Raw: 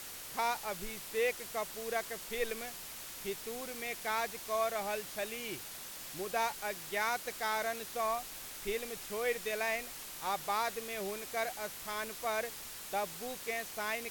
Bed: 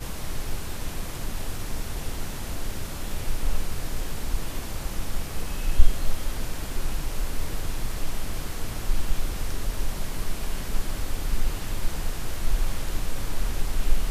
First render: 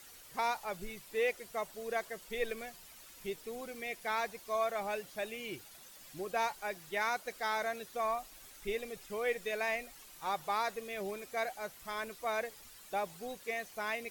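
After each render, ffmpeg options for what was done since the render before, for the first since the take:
-af "afftdn=nr=11:nf=-46"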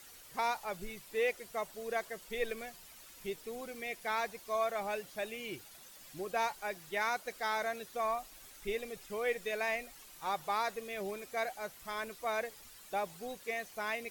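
-af anull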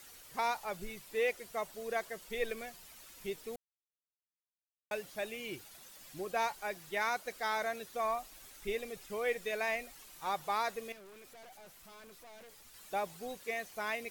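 -filter_complex "[0:a]asettb=1/sr,asplit=3[a][b][c];[a]atrim=end=10.924[d];[b]atrim=start=10.92:end=12.74,asetpts=PTS-STARTPTS,afade=t=in:d=0.004:c=qsin,afade=t=out:st=1.816:d=0.004:c=qsin,aeval=exprs='(tanh(447*val(0)+0.3)-tanh(0.3))/447':c=same[e];[c]atrim=start=12.736[f];[d][e]acrossfade=d=0.004:c1=hsin:c2=qsin[g];[g][f]acrossfade=d=0.004:c1=qsin:c2=hsin,asplit=3[h][i][j];[h]atrim=end=3.56,asetpts=PTS-STARTPTS,afade=t=out:st=3.556:d=0.004:c=hsin[k];[i]atrim=start=3.56:end=4.91,asetpts=PTS-STARTPTS,volume=0[l];[j]atrim=start=4.91,asetpts=PTS-STARTPTS,afade=t=in:d=0.004:c=hsin[m];[k][l][m]concat=n=3:v=0:a=1"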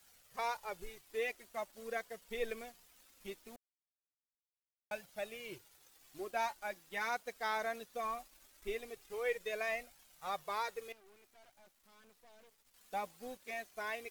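-af "flanger=delay=1.2:depth=3.4:regen=-23:speed=0.2:shape=triangular,aeval=exprs='sgn(val(0))*max(abs(val(0))-0.001,0)':c=same"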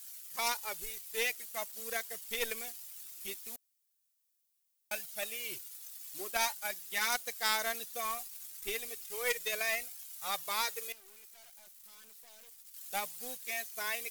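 -af "aeval=exprs='0.0631*(cos(1*acos(clip(val(0)/0.0631,-1,1)))-cos(1*PI/2))+0.00708*(cos(3*acos(clip(val(0)/0.0631,-1,1)))-cos(3*PI/2))+0.00891*(cos(4*acos(clip(val(0)/0.0631,-1,1)))-cos(4*PI/2))+0.00398*(cos(6*acos(clip(val(0)/0.0631,-1,1)))-cos(6*PI/2))':c=same,crystalizer=i=8:c=0"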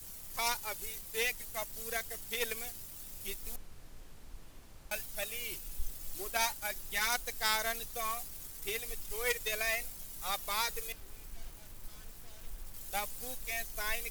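-filter_complex "[1:a]volume=-22.5dB[a];[0:a][a]amix=inputs=2:normalize=0"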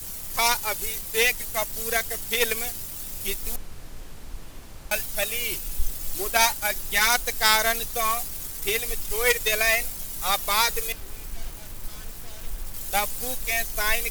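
-af "volume=12dB,alimiter=limit=-3dB:level=0:latency=1"

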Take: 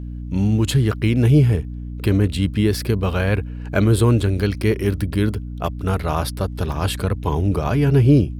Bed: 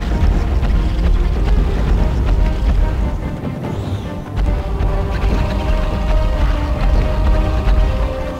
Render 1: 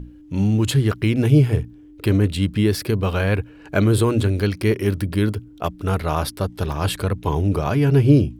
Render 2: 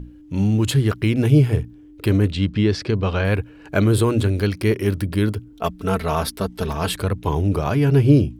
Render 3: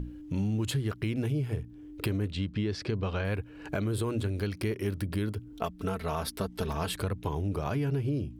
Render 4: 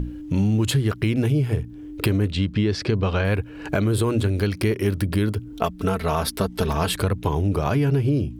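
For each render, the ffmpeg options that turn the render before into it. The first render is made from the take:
-af "bandreject=f=60:t=h:w=6,bandreject=f=120:t=h:w=6,bandreject=f=180:t=h:w=6,bandreject=f=240:t=h:w=6"
-filter_complex "[0:a]asettb=1/sr,asplit=3[a][b][c];[a]atrim=end=2.304[d];[b]atrim=start=2.3:end=3.25,asetpts=PTS-STARTPTS,afade=t=in:d=0.004:c=qsin,afade=t=out:st=0.946:d=0.004:c=qsin,lowpass=f=6.2k:w=0.5412,lowpass=f=6.2k:w=1.3066[e];[c]atrim=start=3.246[f];[d][e]acrossfade=d=0.004:c1=hsin:c2=qsin[g];[g][f]acrossfade=d=0.004:c1=qsin:c2=hsin,asettb=1/sr,asplit=3[h][i][j];[h]atrim=end=5.524[k];[i]atrim=start=5.52:end=6.94,asetpts=PTS-STARTPTS,afade=t=in:d=0.004:c=qsin,afade=t=out:st=1.416:d=0.004:c=qsin,aecho=1:1:4.5:0.63,atrim=end_sample=62622[l];[j]atrim=start=6.936[m];[k][l]acrossfade=d=0.004:c1=hsin:c2=qsin[n];[n][m]acrossfade=d=0.004:c1=qsin:c2=hsin"
-af "alimiter=limit=-11dB:level=0:latency=1:release=459,acompressor=threshold=-31dB:ratio=3"
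-af "volume=9.5dB"

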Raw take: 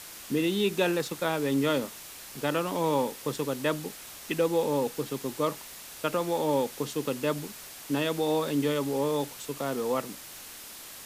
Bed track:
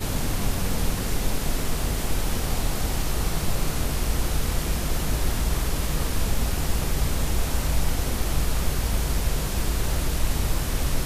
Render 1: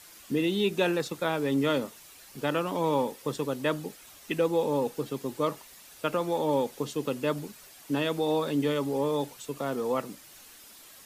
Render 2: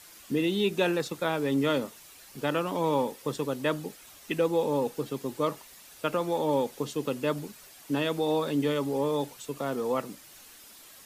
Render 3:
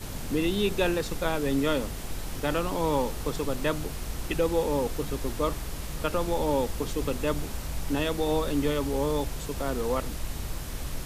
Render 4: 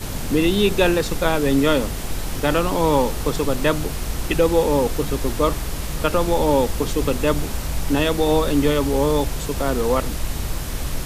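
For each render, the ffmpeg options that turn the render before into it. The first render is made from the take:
-af "afftdn=nr=9:nf=-45"
-af anull
-filter_complex "[1:a]volume=-10dB[a];[0:a][a]amix=inputs=2:normalize=0"
-af "volume=8.5dB"

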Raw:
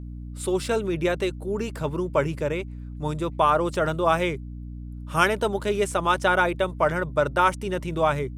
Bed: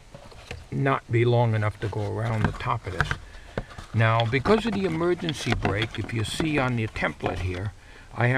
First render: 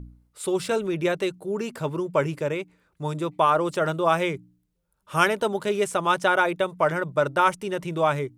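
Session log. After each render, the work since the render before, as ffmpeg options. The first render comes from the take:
-af "bandreject=f=60:t=h:w=4,bandreject=f=120:t=h:w=4,bandreject=f=180:t=h:w=4,bandreject=f=240:t=h:w=4,bandreject=f=300:t=h:w=4"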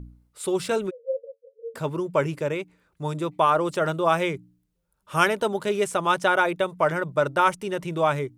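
-filter_complex "[0:a]asplit=3[a][b][c];[a]afade=t=out:st=0.89:d=0.02[d];[b]asuperpass=centerf=500:order=20:qfactor=5,afade=t=in:st=0.89:d=0.02,afade=t=out:st=1.74:d=0.02[e];[c]afade=t=in:st=1.74:d=0.02[f];[d][e][f]amix=inputs=3:normalize=0"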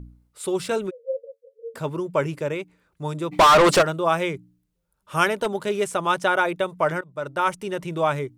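-filter_complex "[0:a]asplit=3[a][b][c];[a]afade=t=out:st=3.31:d=0.02[d];[b]asplit=2[e][f];[f]highpass=f=720:p=1,volume=32dB,asoftclip=type=tanh:threshold=-7dB[g];[e][g]amix=inputs=2:normalize=0,lowpass=f=4k:p=1,volume=-6dB,afade=t=in:st=3.31:d=0.02,afade=t=out:st=3.81:d=0.02[h];[c]afade=t=in:st=3.81:d=0.02[i];[d][h][i]amix=inputs=3:normalize=0,asettb=1/sr,asplit=3[j][k][l];[j]atrim=end=5.364[m];[k]atrim=start=5.36:end=5.84,asetpts=PTS-STARTPTS,afade=t=in:d=0.004:c=qsin,afade=t=out:st=0.476:d=0.004:c=qsin,aeval=exprs='0.178*(abs(mod(val(0)/0.178+3,4)-2)-1)':c=same[n];[l]atrim=start=5.836[o];[m][n]acrossfade=d=0.004:c1=hsin:c2=qsin[p];[p][o]acrossfade=d=0.004:c1=qsin:c2=hsin,asplit=2[q][r];[q]atrim=end=7.01,asetpts=PTS-STARTPTS,afade=t=out:st=7.006:d=0.004:c=hsin:silence=0.0841395[s];[r]atrim=start=7.01,asetpts=PTS-STARTPTS,afade=t=in:d=0.58:silence=0.0841395[t];[s][t]concat=n=2:v=0:a=1"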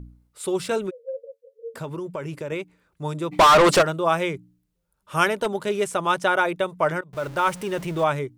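-filter_complex "[0:a]asettb=1/sr,asplit=3[a][b][c];[a]atrim=end=0.994[d];[b]atrim=start=0.99:end=2.52,asetpts=PTS-STARTPTS,afade=t=in:d=0.004:c=qsin,afade=t=out:st=1.526:d=0.004:c=qsin,acompressor=threshold=-27dB:ratio=6:attack=3.2:release=140:knee=1:detection=peak[e];[c]atrim=start=2.516[f];[d][e]acrossfade=d=0.004:c1=hsin:c2=qsin[g];[g][f]acrossfade=d=0.004:c1=qsin:c2=hsin,asettb=1/sr,asplit=3[h][i][j];[h]atrim=end=7.134[k];[i]atrim=start=7.13:end=8.04,asetpts=PTS-STARTPTS,afade=t=in:d=0.004:c=qsin,afade=t=out:st=0.906:d=0.004:c=qsin,aeval=exprs='val(0)+0.5*0.0178*sgn(val(0))':c=same[l];[j]atrim=start=8.036[m];[k][l]acrossfade=d=0.004:c1=hsin:c2=qsin[n];[n][m]acrossfade=d=0.004:c1=qsin:c2=hsin"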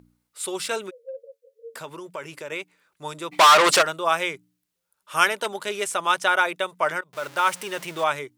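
-af "highpass=f=400:p=1,tiltshelf=f=880:g=-5"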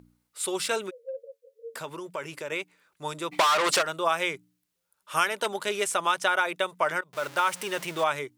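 -af "acompressor=threshold=-20dB:ratio=5"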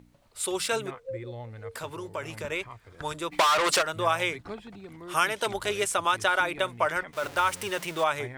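-filter_complex "[1:a]volume=-19dB[a];[0:a][a]amix=inputs=2:normalize=0"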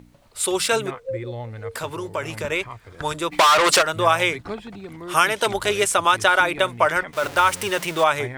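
-af "volume=7.5dB,alimiter=limit=-3dB:level=0:latency=1"

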